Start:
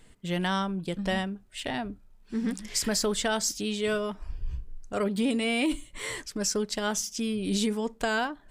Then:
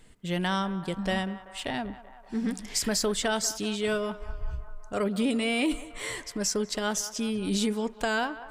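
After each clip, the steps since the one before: band-passed feedback delay 192 ms, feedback 77%, band-pass 1 kHz, level -14 dB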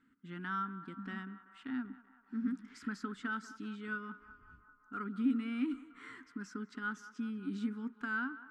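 two resonant band-passes 600 Hz, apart 2.4 oct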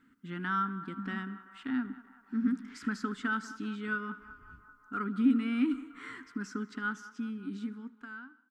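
fade out at the end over 2.00 s; feedback delay 77 ms, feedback 56%, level -21.5 dB; trim +6 dB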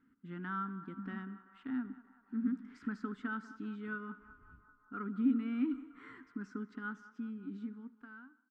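low-pass 1.2 kHz 6 dB/octave; trim -4.5 dB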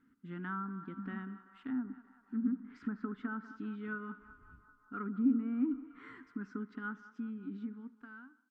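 low-pass that closes with the level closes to 1.2 kHz, closed at -34 dBFS; trim +1 dB

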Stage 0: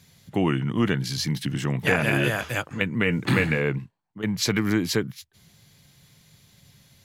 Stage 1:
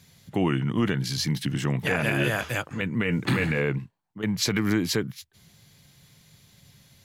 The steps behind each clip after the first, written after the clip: peak limiter -13.5 dBFS, peak gain reduction 7 dB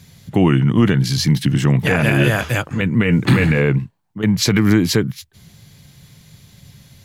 bass shelf 230 Hz +7 dB; trim +7 dB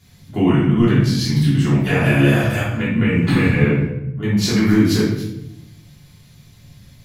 simulated room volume 260 m³, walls mixed, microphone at 3.2 m; trim -11.5 dB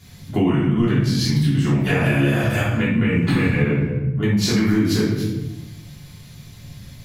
compression 3:1, threshold -23 dBFS, peak gain reduction 11 dB; trim +5.5 dB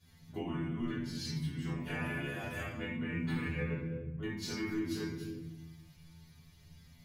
inharmonic resonator 81 Hz, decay 0.4 s, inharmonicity 0.002; trim -7.5 dB

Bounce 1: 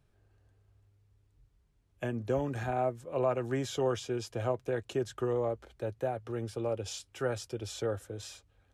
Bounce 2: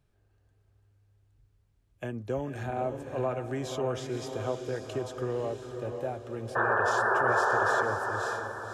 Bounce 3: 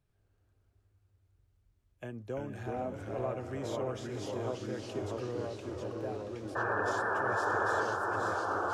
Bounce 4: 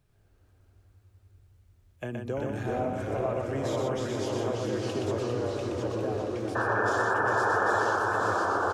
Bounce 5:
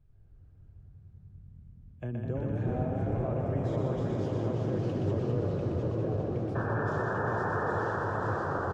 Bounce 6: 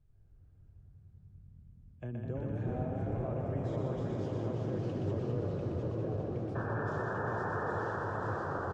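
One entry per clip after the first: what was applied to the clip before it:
painted sound noise, 6.55–7.83 s, 360–1800 Hz -25 dBFS; echo that smears into a reverb 548 ms, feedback 43%, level -6 dB; trim -1.5 dB
ever faster or slower copies 94 ms, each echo -2 st, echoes 2; trim -6.5 dB
in parallel at +2 dB: compression, threshold -40 dBFS, peak gain reduction 12.5 dB; on the sum: multi-tap echo 122/399 ms -4/-7.5 dB; trim +1 dB
RIAA curve playback; frequency-shifting echo 205 ms, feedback 53%, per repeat +38 Hz, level -6 dB; trim -8 dB
resampled via 22.05 kHz; trim -4.5 dB

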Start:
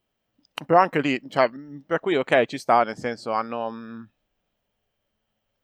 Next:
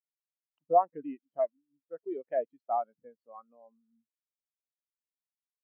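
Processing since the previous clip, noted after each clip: spectral contrast expander 2.5:1; trim -8 dB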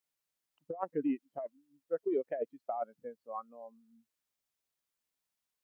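compressor with a negative ratio -36 dBFS, ratio -1; trim +1.5 dB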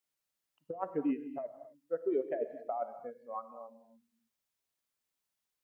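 gated-style reverb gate 290 ms flat, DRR 9.5 dB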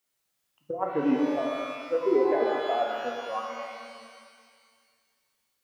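pitch-shifted reverb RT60 1.9 s, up +12 st, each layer -8 dB, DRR 0 dB; trim +6.5 dB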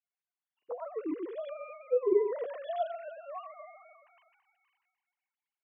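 formants replaced by sine waves; trim -6.5 dB

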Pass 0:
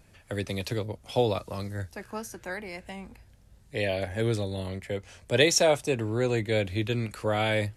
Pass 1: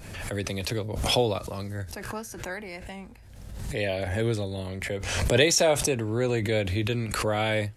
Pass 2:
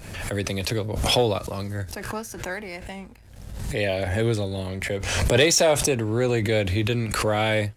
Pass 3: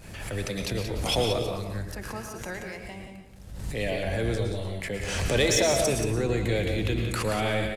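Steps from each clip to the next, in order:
swell ahead of each attack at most 41 dB/s
waveshaping leveller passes 1
octave divider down 1 oct, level -4 dB; delay 179 ms -8 dB; on a send at -5.5 dB: reverberation, pre-delay 105 ms; on the sum: trim -6 dB

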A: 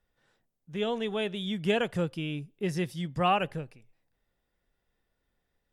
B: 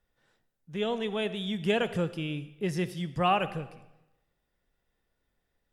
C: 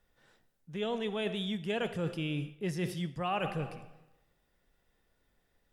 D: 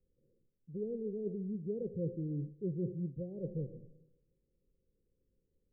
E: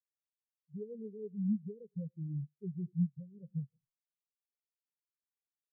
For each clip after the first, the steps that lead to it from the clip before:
algorithmic reverb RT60 0.97 s, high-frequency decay 0.9×, pre-delay 20 ms, DRR 14 dB
hum notches 60/120 Hz; reverse; compression 5:1, threshold -36 dBFS, peak gain reduction 14 dB; reverse; trim +4.5 dB
rippled Chebyshev low-pass 540 Hz, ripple 3 dB; trim -1.5 dB
comb filter that takes the minimum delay 0.38 ms; compression, threshold -40 dBFS, peak gain reduction 8 dB; spectral contrast expander 4:1; trim +10 dB

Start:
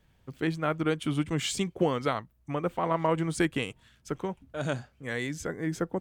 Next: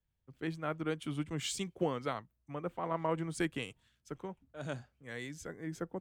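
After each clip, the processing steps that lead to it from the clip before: three bands expanded up and down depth 40%; trim -8.5 dB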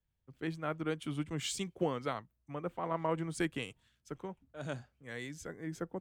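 no audible change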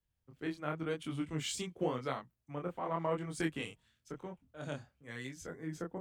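chorus 0.93 Hz, depth 5.6 ms; trim +2 dB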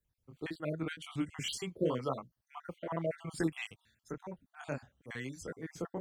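random holes in the spectrogram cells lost 44%; trim +3 dB

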